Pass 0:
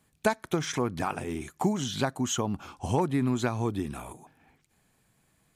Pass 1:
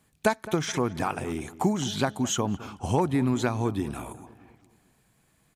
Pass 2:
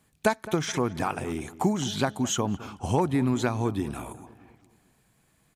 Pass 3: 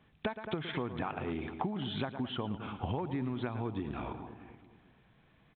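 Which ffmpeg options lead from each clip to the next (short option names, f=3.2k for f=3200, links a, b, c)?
-filter_complex "[0:a]asplit=2[a][b];[b]adelay=212,lowpass=f=1.7k:p=1,volume=-16.5dB,asplit=2[c][d];[d]adelay=212,lowpass=f=1.7k:p=1,volume=0.51,asplit=2[e][f];[f]adelay=212,lowpass=f=1.7k:p=1,volume=0.51,asplit=2[g][h];[h]adelay=212,lowpass=f=1.7k:p=1,volume=0.51,asplit=2[i][j];[j]adelay=212,lowpass=f=1.7k:p=1,volume=0.51[k];[a][c][e][g][i][k]amix=inputs=6:normalize=0,volume=2dB"
-af anull
-af "aecho=1:1:112:0.2,acompressor=threshold=-33dB:ratio=8,volume=1dB" -ar 8000 -c:a pcm_mulaw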